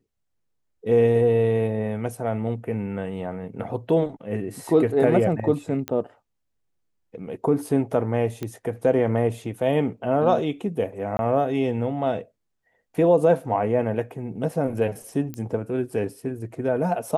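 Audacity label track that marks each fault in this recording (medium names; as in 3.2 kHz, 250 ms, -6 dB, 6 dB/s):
5.880000	5.880000	pop -13 dBFS
8.430000	8.430000	pop -17 dBFS
11.170000	11.190000	dropout 20 ms
15.340000	15.340000	pop -19 dBFS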